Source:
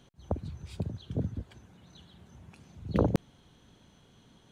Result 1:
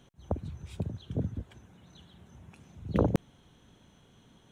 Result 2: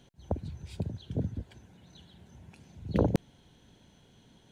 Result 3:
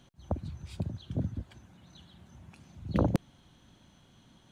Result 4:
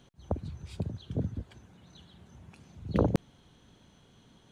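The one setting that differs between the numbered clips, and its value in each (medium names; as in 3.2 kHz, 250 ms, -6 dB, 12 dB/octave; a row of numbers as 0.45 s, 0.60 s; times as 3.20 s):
peaking EQ, frequency: 4.6 kHz, 1.2 kHz, 440 Hz, 15 kHz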